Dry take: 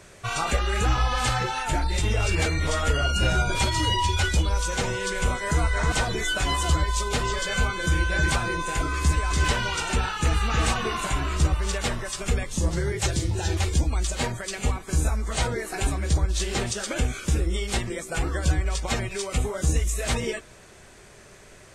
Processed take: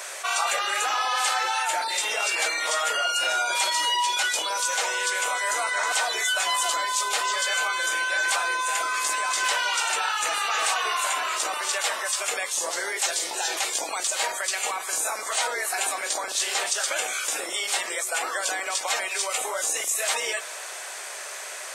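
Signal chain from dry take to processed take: octaver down 2 oct, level +3 dB; HPF 620 Hz 24 dB/oct; high shelf 8800 Hz +8.5 dB; fast leveller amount 50%

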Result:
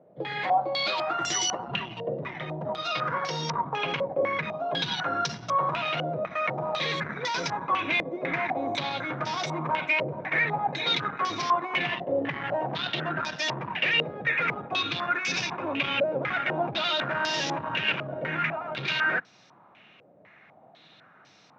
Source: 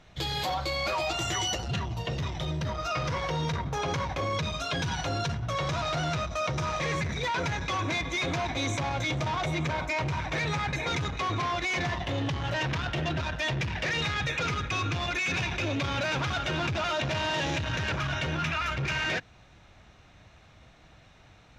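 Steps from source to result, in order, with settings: HPF 160 Hz 24 dB/oct; stepped low-pass 4 Hz 550–5300 Hz; gain -1 dB

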